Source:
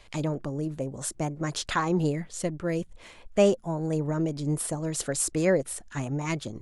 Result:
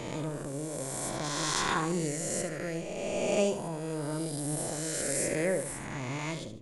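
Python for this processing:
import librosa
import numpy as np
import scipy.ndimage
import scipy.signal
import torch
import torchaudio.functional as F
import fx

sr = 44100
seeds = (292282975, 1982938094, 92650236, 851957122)

y = fx.spec_swells(x, sr, rise_s=2.41)
y = fx.high_shelf(y, sr, hz=5400.0, db=9.5, at=(1.24, 3.68))
y = fx.echo_feedback(y, sr, ms=73, feedback_pct=30, wet_db=-10.0)
y = y * 10.0 ** (-9.0 / 20.0)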